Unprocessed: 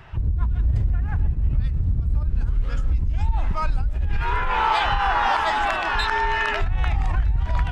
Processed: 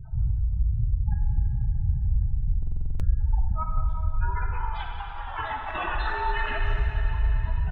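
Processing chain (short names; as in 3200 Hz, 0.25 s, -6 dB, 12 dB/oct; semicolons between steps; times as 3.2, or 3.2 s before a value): wow and flutter 22 cents; reverb removal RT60 1.3 s; low shelf 160 Hz +12 dB; 4.5–5.86 negative-ratio compressor -30 dBFS, ratio -0.5; limiter -18.5 dBFS, peak gain reduction 16.5 dB; spectral gate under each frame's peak -20 dB strong; speakerphone echo 0.3 s, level -21 dB; plate-style reverb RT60 3.8 s, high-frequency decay 1×, pre-delay 0 ms, DRR -0.5 dB; stuck buffer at 2.58, samples 2048, times 8; gain -3 dB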